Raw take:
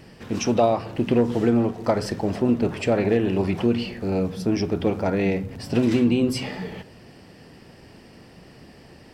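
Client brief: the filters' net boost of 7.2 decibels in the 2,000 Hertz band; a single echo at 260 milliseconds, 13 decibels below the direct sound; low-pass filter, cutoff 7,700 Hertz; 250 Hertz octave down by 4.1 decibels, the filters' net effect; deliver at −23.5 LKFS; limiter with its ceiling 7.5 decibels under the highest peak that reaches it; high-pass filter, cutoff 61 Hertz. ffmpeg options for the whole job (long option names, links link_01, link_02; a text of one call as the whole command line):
ffmpeg -i in.wav -af "highpass=61,lowpass=7700,equalizer=frequency=250:width_type=o:gain=-5,equalizer=frequency=2000:width_type=o:gain=9,alimiter=limit=-14dB:level=0:latency=1,aecho=1:1:260:0.224,volume=2.5dB" out.wav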